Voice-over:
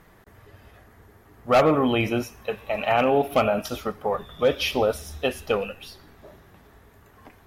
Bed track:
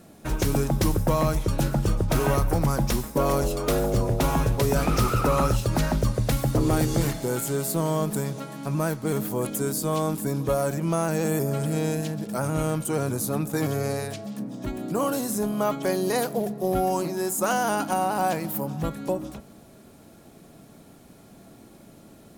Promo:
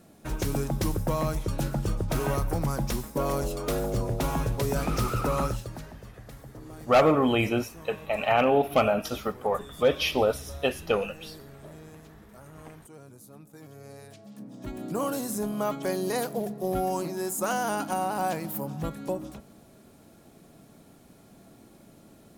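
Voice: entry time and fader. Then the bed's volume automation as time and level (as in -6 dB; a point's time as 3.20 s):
5.40 s, -1.5 dB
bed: 5.44 s -5 dB
5.94 s -22.5 dB
13.64 s -22.5 dB
14.82 s -4 dB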